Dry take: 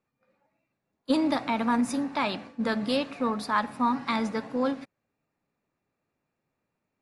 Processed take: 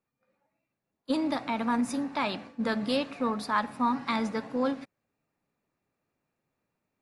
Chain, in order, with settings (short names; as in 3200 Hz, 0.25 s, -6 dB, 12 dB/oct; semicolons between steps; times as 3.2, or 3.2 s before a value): vocal rider 2 s; gain -2 dB